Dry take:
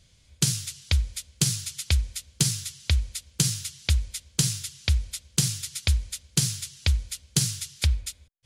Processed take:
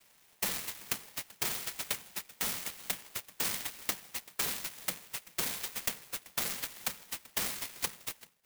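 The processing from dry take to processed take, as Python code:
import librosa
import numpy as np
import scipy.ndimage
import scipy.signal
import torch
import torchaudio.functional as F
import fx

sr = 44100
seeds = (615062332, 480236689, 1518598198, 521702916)

p1 = fx.noise_vocoder(x, sr, seeds[0], bands=6)
p2 = 10.0 ** (-23.5 / 20.0) * np.tanh(p1 / 10.0 ** (-23.5 / 20.0))
p3 = fx.bandpass_edges(p2, sr, low_hz=520.0, high_hz=3800.0)
p4 = p3 + fx.echo_single(p3, sr, ms=386, db=-20.5, dry=0)
p5 = (np.kron(p4[::4], np.eye(4)[0]) * 4)[:len(p4)]
y = fx.clock_jitter(p5, sr, seeds[1], jitter_ms=0.06)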